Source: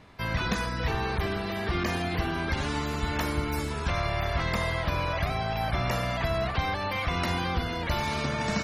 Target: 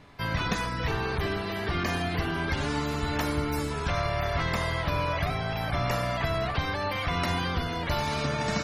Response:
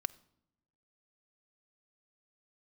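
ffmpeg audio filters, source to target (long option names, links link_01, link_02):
-filter_complex "[0:a]asplit=2[link_01][link_02];[1:a]atrim=start_sample=2205,asetrate=22050,aresample=44100,adelay=7[link_03];[link_02][link_03]afir=irnorm=-1:irlink=0,volume=-13dB[link_04];[link_01][link_04]amix=inputs=2:normalize=0"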